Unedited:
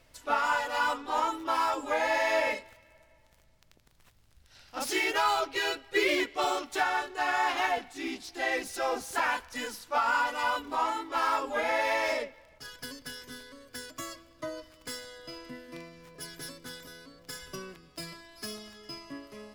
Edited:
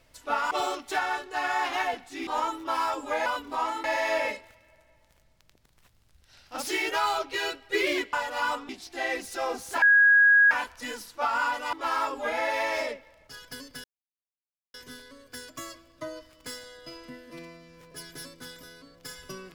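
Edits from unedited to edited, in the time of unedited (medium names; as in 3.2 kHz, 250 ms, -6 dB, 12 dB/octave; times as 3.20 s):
0.51–1.07 s: swap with 6.35–8.11 s
9.24 s: add tone 1.65 kHz -14.5 dBFS 0.69 s
10.46–11.04 s: move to 2.06 s
13.15 s: insert silence 0.90 s
15.71–16.05 s: stretch 1.5×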